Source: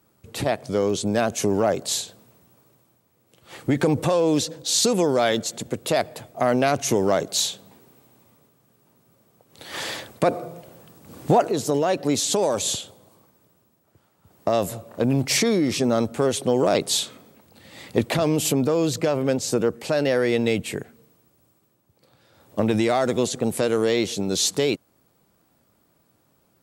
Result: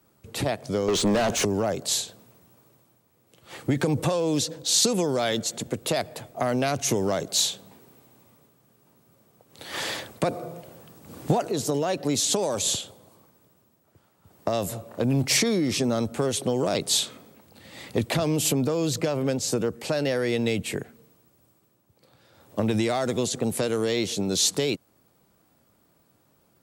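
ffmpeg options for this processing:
-filter_complex "[0:a]asettb=1/sr,asplit=3[s0][s1][s2];[s0]atrim=end=0.884[s3];[s1]atrim=start=0.88:end=1.45,asetpts=PTS-STARTPTS,afade=t=in:d=0.004:c=qsin,afade=t=out:st=0.566:d=0.004:c=qsin,asplit=2[s4][s5];[s5]highpass=f=720:p=1,volume=22.4,asoftclip=type=tanh:threshold=0.422[s6];[s4][s6]amix=inputs=2:normalize=0,lowpass=f=1800:p=1,volume=0.501[s7];[s2]atrim=start=1.446[s8];[s3][s7]acrossfade=d=0.004:c1=hsin:c2=qsin[s9];[s9][s8]acrossfade=d=0.004:c1=qsin:c2=hsin,acrossover=split=180|3000[s10][s11][s12];[s11]acompressor=threshold=0.0562:ratio=2.5[s13];[s10][s13][s12]amix=inputs=3:normalize=0"

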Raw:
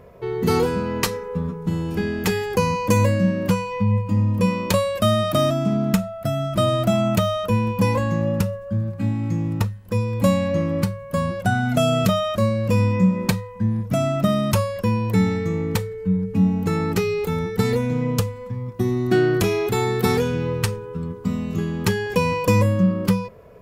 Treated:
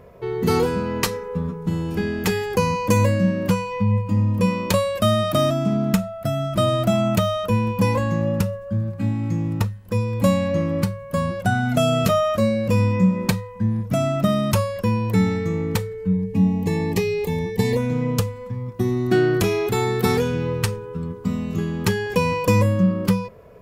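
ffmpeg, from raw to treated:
-filter_complex "[0:a]asettb=1/sr,asplit=3[s0][s1][s2];[s0]atrim=end=12.054[s3];[s1]atrim=start=12.05:end=12.68,asetpts=PTS-STARTPTS,afade=t=in:d=0.004:c=qsin,afade=t=out:st=0.626:d=0.004:c=qsin,asplit=2[s4][s5];[s5]adelay=13,volume=0.562[s6];[s4][s6]amix=inputs=2:normalize=0,atrim=end_sample=27783[s7];[s2]atrim=start=12.676[s8];[s3][s7]acrossfade=d=0.004:c1=hsin:c2=qsin[s9];[s9][s8]acrossfade=d=0.004:c1=qsin:c2=hsin,asettb=1/sr,asplit=3[s10][s11][s12];[s10]atrim=end=16.134[s13];[s11]atrim=start=16.13:end=17.77,asetpts=PTS-STARTPTS,afade=t=in:d=0.004:c=qsin,afade=t=out:st=1.636:d=0.004:c=qsin,asuperstop=centerf=1400:order=20:qfactor=3.6[s14];[s12]atrim=start=17.766[s15];[s13][s14]acrossfade=d=0.004:c1=hsin:c2=qsin[s16];[s16][s15]acrossfade=d=0.004:c1=qsin:c2=hsin"

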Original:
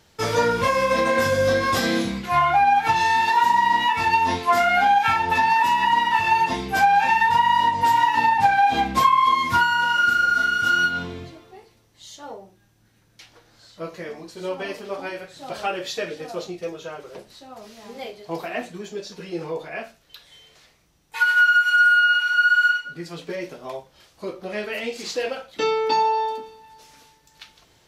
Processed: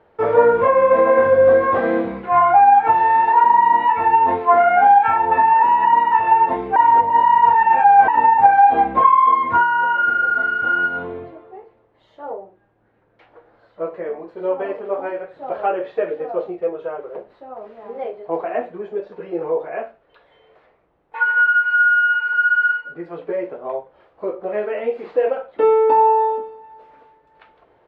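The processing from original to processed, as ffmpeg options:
-filter_complex "[0:a]asplit=3[s0][s1][s2];[s0]atrim=end=6.762[s3];[s1]atrim=start=6.758:end=8.082,asetpts=PTS-STARTPTS,areverse[s4];[s2]atrim=start=8.078[s5];[s3][s4]acrossfade=d=0.004:c1=hsin:c2=hsin[s6];[s6][s5]acrossfade=d=0.004:c1=hsin:c2=hsin,highshelf=f=3200:g=-8.5,acrossover=split=3300[s7][s8];[s8]acompressor=threshold=0.00501:ratio=4:attack=1:release=60[s9];[s7][s9]amix=inputs=2:normalize=0,firequalizer=gain_entry='entry(160,0);entry(450,15);entry(5800,-22)':delay=0.05:min_phase=1,volume=0.531"

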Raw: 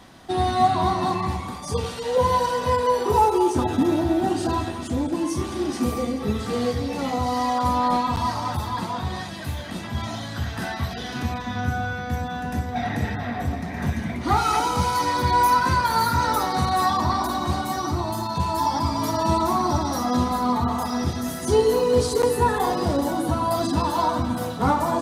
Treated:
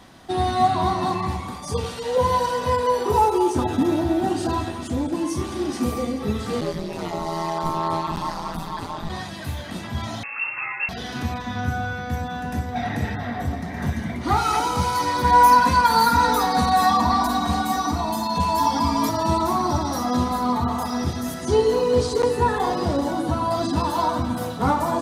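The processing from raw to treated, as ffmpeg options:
-filter_complex "[0:a]asplit=3[s0][s1][s2];[s0]afade=t=out:st=6.6:d=0.02[s3];[s1]aeval=exprs='val(0)*sin(2*PI*83*n/s)':c=same,afade=t=in:st=6.6:d=0.02,afade=t=out:st=9.08:d=0.02[s4];[s2]afade=t=in:st=9.08:d=0.02[s5];[s3][s4][s5]amix=inputs=3:normalize=0,asettb=1/sr,asplit=3[s6][s7][s8];[s6]atrim=end=10.234[s9];[s7]atrim=start=10.23:end=10.89,asetpts=PTS-STARTPTS,afade=t=in:d=0.004:c=qsin,afade=t=out:st=0.656:d=0.004:c=qsin,lowpass=f=2400:t=q:w=0.5098,lowpass=f=2400:t=q:w=0.6013,lowpass=f=2400:t=q:w=0.9,lowpass=f=2400:t=q:w=2.563,afreqshift=-2800[s10];[s8]atrim=start=10.886[s11];[s9][s10]acrossfade=d=0.004:c1=hsin:c2=qsin[s12];[s12][s11]acrossfade=d=0.004:c1=qsin:c2=hsin,asettb=1/sr,asplit=3[s13][s14][s15];[s13]atrim=end=13.174[s16];[s14]atrim=start=13.17:end=14.24,asetpts=PTS-STARTPTS,afade=t=in:d=0.004:c=qsin,afade=t=out:st=1.066:d=0.004:c=qsin,bandreject=f=2500:w=12[s17];[s15]atrim=start=14.236[s18];[s16][s17]acrossfade=d=0.004:c1=hsin:c2=qsin[s19];[s19][s18]acrossfade=d=0.004:c1=qsin:c2=hsin,asettb=1/sr,asplit=3[s20][s21][s22];[s20]atrim=end=15.244[s23];[s21]atrim=start=15.24:end=19.09,asetpts=PTS-STARTPTS,afade=t=in:d=0.004:c=qsin,afade=t=out:st=3.846:d=0.004:c=qsin,aecho=1:1:4.2:0.95,atrim=end_sample=169785[s24];[s22]atrim=start=19.086[s25];[s23][s24]acrossfade=d=0.004:c1=hsin:c2=qsin[s26];[s26][s25]acrossfade=d=0.004:c1=qsin:c2=hsin,asettb=1/sr,asplit=3[s27][s28][s29];[s27]atrim=end=21.344[s30];[s28]atrim=start=21.34:end=23.76,asetpts=PTS-STARTPTS,afade=t=in:d=0.004:c=qsin,afade=t=out:st=2.416:d=0.004:c=qsin,acrossover=split=7700[s31][s32];[s32]acompressor=threshold=0.00224:ratio=4:attack=1:release=60[s33];[s31][s33]amix=inputs=2:normalize=0[s34];[s29]atrim=start=23.756[s35];[s30][s34]acrossfade=d=0.004:c1=hsin:c2=qsin[s36];[s36][s35]acrossfade=d=0.004:c1=qsin:c2=hsin"

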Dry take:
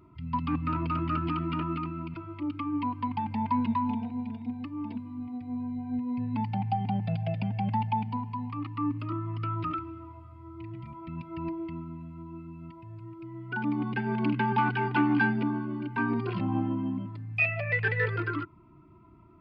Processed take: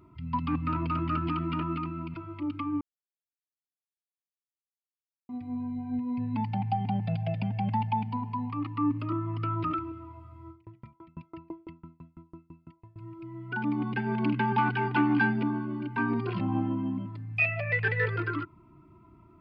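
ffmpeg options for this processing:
-filter_complex "[0:a]asettb=1/sr,asplit=3[s0][s1][s2];[s0]atrim=end=8.224[s3];[s1]atrim=start=8.22:end=9.92,asetpts=PTS-STARTPTS,afade=t=in:d=0.004:c=qsin,afade=t=out:st=1.696:d=0.004:c=qsin,equalizer=f=490:t=o:w=2.1:g=4.5[s4];[s2]atrim=start=9.916[s5];[s3][s4]acrossfade=d=0.004:c1=hsin:c2=qsin[s6];[s6][s5]acrossfade=d=0.004:c1=qsin:c2=hsin,asettb=1/sr,asplit=3[s7][s8][s9];[s7]atrim=end=10.504[s10];[s8]atrim=start=10.5:end=12.96,asetpts=PTS-STARTPTS,afade=t=in:d=0.004:c=qsin,afade=t=out:st=2.456:d=0.004:c=qsin,aeval=exprs='val(0)*pow(10,-33*if(lt(mod(6*n/s,1),2*abs(6)/1000),1-mod(6*n/s,1)/(2*abs(6)/1000),(mod(6*n/s,1)-2*abs(6)/1000)/(1-2*abs(6)/1000))/20)':c=same[s11];[s9]atrim=start=12.956[s12];[s10][s11]acrossfade=d=0.004:c1=hsin:c2=qsin[s13];[s13][s12]acrossfade=d=0.004:c1=qsin:c2=hsin,asplit=3[s14][s15][s16];[s14]atrim=end=2.81,asetpts=PTS-STARTPTS,afade=t=out:st=2.806:d=0.004:c=hsin[s17];[s15]atrim=start=2.81:end=5.29,asetpts=PTS-STARTPTS,volume=0[s18];[s16]atrim=start=5.29,asetpts=PTS-STARTPTS,afade=t=in:d=0.004:c=hsin[s19];[s17][s18][s19]concat=n=3:v=0:a=1"

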